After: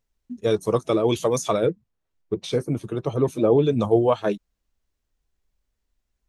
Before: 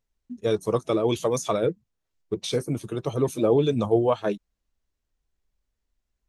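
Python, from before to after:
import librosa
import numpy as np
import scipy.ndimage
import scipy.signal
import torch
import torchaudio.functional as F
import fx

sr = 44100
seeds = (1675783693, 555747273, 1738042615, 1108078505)

y = fx.high_shelf(x, sr, hz=3300.0, db=-9.0, at=(1.7, 3.8))
y = F.gain(torch.from_numpy(y), 2.5).numpy()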